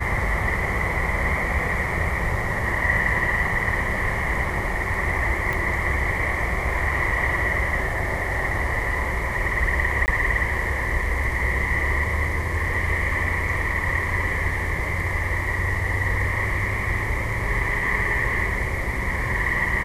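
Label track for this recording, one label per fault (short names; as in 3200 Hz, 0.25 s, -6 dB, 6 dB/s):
5.530000	5.530000	pop
10.060000	10.080000	gap 19 ms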